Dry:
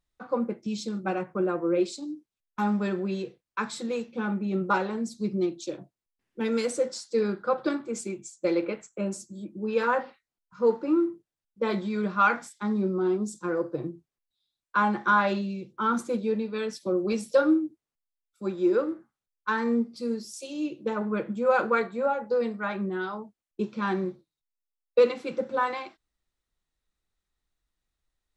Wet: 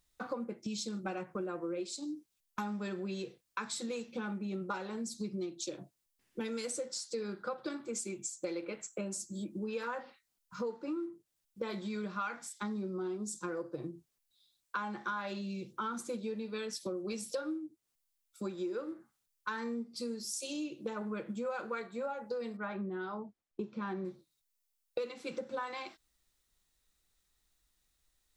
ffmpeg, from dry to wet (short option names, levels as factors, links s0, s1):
-filter_complex "[0:a]asettb=1/sr,asplit=3[s0][s1][s2];[s0]atrim=end=22.574[s3];[s1]atrim=start=22.57:end=24.05,asetpts=PTS-STARTPTS,afade=t=in:d=0.004:c=qsin,afade=t=out:st=1.476:d=0.004:c=qsin,lowpass=f=1200:p=1[s4];[s2]atrim=start=24.046[s5];[s3][s4]acrossfade=d=0.004:c1=hsin:c2=qsin[s6];[s6][s5]acrossfade=d=0.004:c1=qsin:c2=hsin,highshelf=f=3600:g=11,acompressor=threshold=0.0112:ratio=6,volume=1.33"